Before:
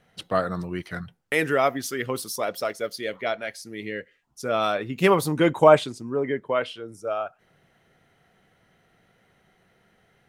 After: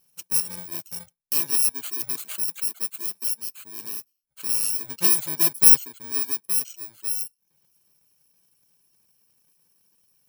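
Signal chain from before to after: bit-reversed sample order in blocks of 64 samples; reverb removal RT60 0.54 s; tilt EQ +2 dB/octave; trim -6.5 dB

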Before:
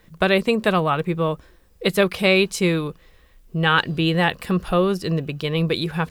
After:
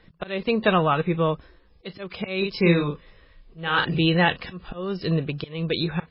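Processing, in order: slow attack 372 ms; 2.37–4.01 s: doubling 41 ms -4 dB; MP3 16 kbps 12 kHz

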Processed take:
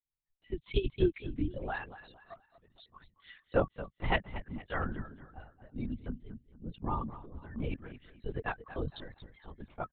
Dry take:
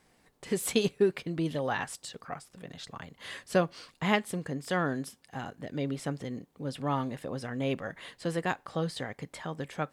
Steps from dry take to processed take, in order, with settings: expander on every frequency bin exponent 2; frequency shift -31 Hz; on a send: feedback delay 229 ms, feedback 35%, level -14 dB; on the sum: LPC vocoder at 8 kHz whisper

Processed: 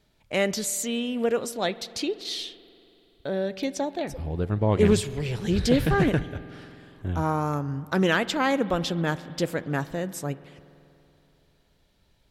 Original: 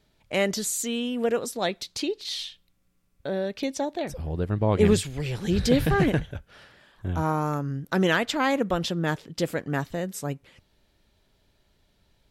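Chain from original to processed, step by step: spring tank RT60 3 s, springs 47 ms, chirp 20 ms, DRR 16.5 dB; loudspeaker Doppler distortion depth 0.12 ms

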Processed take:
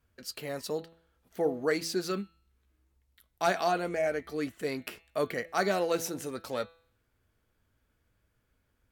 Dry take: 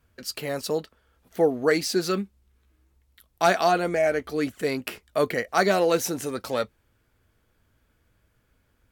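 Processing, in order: de-hum 165.4 Hz, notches 26; trim -7 dB

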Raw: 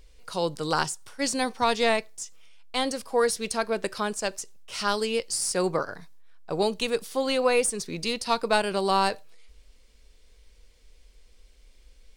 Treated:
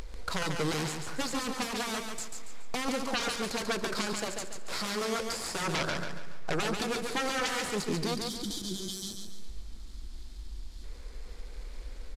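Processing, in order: median filter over 15 samples; sine folder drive 17 dB, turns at -11 dBFS; pre-emphasis filter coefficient 0.8; upward compressor, threshold -38 dBFS; peak limiter -14 dBFS, peak gain reduction 7 dB; compression 2.5:1, threshold -34 dBFS, peak gain reduction 8.5 dB; time-frequency box 8.15–10.84 s, 370–3000 Hz -24 dB; bit crusher 10-bit; distance through air 61 m; feedback delay 141 ms, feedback 37%, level -5 dB; on a send at -21 dB: reverberation RT60 4.7 s, pre-delay 113 ms; on the sum: resampled via 32 kHz; trim +3 dB

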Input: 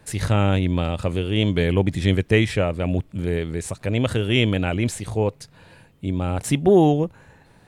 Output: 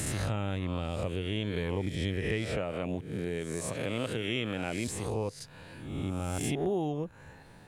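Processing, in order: reverse spectral sustain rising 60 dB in 0.83 s; 2.57–4.88 s: high-pass 130 Hz 12 dB/octave; compression 3:1, threshold -29 dBFS, peak gain reduction 14.5 dB; trim -3 dB

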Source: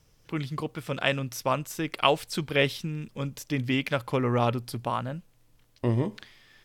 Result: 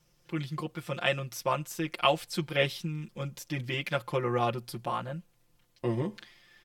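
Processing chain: bass shelf 82 Hz -6.5 dB; comb 5.7 ms, depth 96%; trim -5.5 dB

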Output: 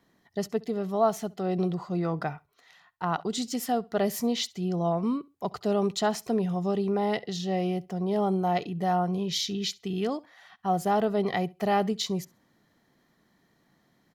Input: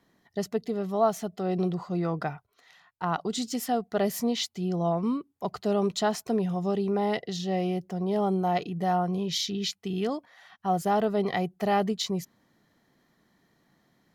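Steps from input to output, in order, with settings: feedback delay 67 ms, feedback 21%, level -24 dB

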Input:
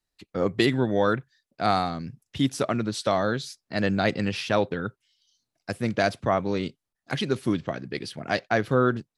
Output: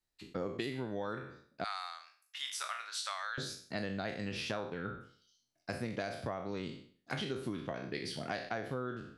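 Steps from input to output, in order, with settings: spectral sustain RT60 0.47 s; 1.64–3.38 s: high-pass 1.1 kHz 24 dB/octave; compression 10:1, threshold -28 dBFS, peak gain reduction 13 dB; trim -6 dB

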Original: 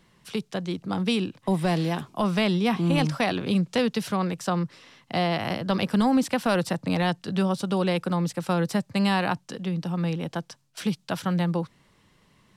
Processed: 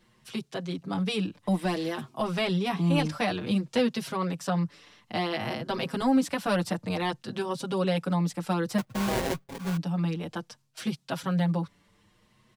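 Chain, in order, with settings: 8.78–9.77 s: sample-rate reducer 1.3 kHz, jitter 20%; endless flanger 6.1 ms +0.57 Hz

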